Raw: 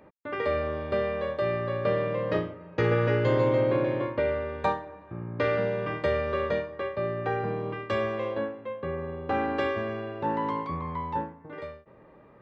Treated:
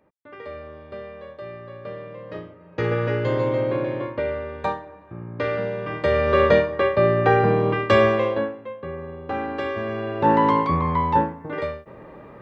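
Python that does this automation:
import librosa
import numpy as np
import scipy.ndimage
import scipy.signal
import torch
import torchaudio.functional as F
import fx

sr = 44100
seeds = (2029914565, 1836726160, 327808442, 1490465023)

y = fx.gain(x, sr, db=fx.line((2.28, -9.0), (2.83, 1.0), (5.85, 1.0), (6.41, 12.0), (8.08, 12.0), (8.76, 0.0), (9.63, 0.0), (10.3, 11.5)))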